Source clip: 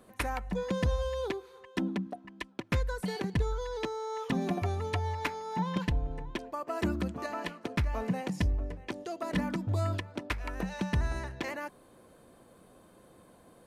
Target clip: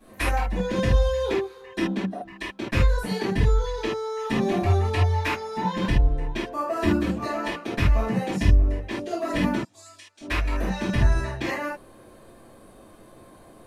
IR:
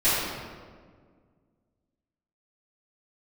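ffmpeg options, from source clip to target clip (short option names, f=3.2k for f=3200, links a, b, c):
-filter_complex "[0:a]asettb=1/sr,asplit=3[a][b][c];[a]atrim=end=9.564[d];[b]atrim=start=9.56:end=10.21,asetpts=PTS-STARTPTS,afade=t=in:d=0.004:c=qsin,afade=t=out:st=0.646:d=0.004:c=qsin,bandpass=f=7.1k:t=q:w=1.8:csg=0[e];[c]atrim=start=10.206[f];[d][e]acrossfade=d=0.004:c1=hsin:c2=qsin[g];[g][f]acrossfade=d=0.004:c1=qsin:c2=hsin[h];[1:a]atrim=start_sample=2205,atrim=end_sample=3969[i];[h][i]afir=irnorm=-1:irlink=0,volume=-5.5dB"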